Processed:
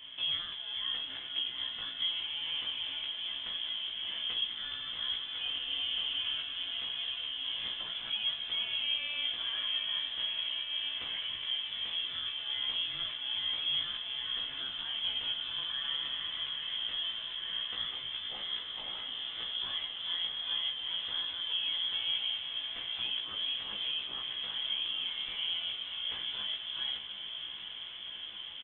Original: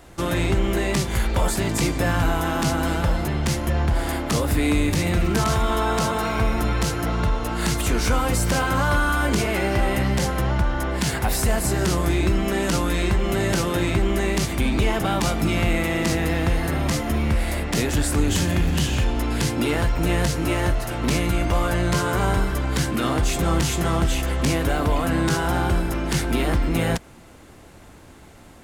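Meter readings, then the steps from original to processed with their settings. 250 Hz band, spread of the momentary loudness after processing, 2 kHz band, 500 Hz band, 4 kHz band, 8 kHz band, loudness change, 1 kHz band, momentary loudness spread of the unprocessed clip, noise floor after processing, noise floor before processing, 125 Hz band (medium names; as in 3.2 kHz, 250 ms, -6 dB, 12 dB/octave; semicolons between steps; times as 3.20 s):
-37.5 dB, 5 LU, -15.5 dB, -33.0 dB, +3.0 dB, under -40 dB, -11.0 dB, -25.0 dB, 3 LU, -43 dBFS, -46 dBFS, under -40 dB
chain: peaking EQ 650 Hz +5 dB 0.46 oct; band-stop 1.4 kHz, Q 9; compression 3:1, threshold -37 dBFS, peak gain reduction 16 dB; resonant high-pass 510 Hz, resonance Q 3.6; doubling 17 ms -2 dB; echo that smears into a reverb 786 ms, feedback 80%, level -9 dB; frequency inversion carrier 3.8 kHz; trim -7 dB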